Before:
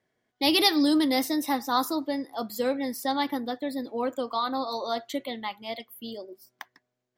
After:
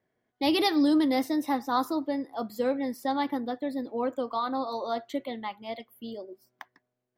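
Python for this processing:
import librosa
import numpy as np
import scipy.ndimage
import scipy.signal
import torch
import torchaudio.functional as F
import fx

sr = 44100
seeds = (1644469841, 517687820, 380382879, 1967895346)

y = fx.high_shelf(x, sr, hz=2700.0, db=-11.0)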